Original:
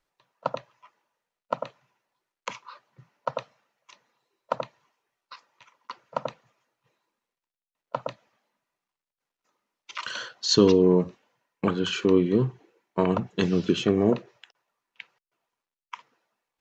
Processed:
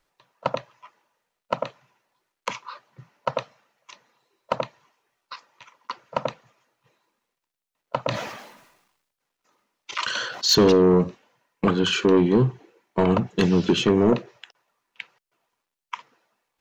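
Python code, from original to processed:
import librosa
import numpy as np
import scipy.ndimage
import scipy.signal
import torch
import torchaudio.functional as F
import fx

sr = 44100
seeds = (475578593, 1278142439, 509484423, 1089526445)

y = 10.0 ** (-17.0 / 20.0) * np.tanh(x / 10.0 ** (-17.0 / 20.0))
y = fx.sustainer(y, sr, db_per_s=57.0, at=(8.04, 10.52))
y = y * 10.0 ** (6.5 / 20.0)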